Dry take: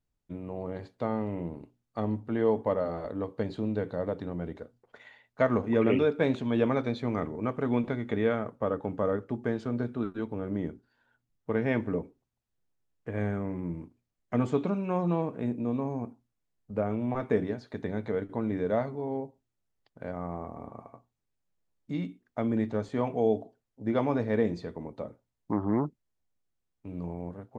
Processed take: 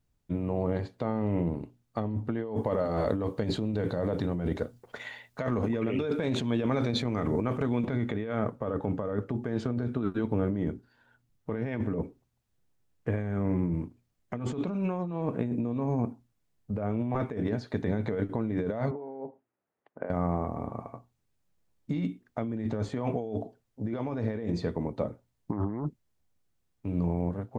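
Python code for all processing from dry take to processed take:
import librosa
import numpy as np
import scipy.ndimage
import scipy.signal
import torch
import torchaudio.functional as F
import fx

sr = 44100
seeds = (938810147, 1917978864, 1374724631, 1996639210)

y = fx.chain(x, sr, fx.over_compress(threshold_db=-32.0, ratio=-1.0),
    fx.high_shelf(hz=4200.0, db=8.0), at=(2.56, 7.85))
y = fx.chain(y, sr, fx.over_compress(threshold_db=-40.0, ratio=-1.0),
    fx.bandpass_edges(low_hz=360.0, high_hz=2200.0),
    fx.air_absorb(metres=480.0), at=(18.91, 20.1))
y = fx.peak_eq(y, sr, hz=100.0, db=4.5, octaves=2.1)
y = fx.over_compress(y, sr, threshold_db=-32.0, ratio=-1.0)
y = y * librosa.db_to_amplitude(2.5)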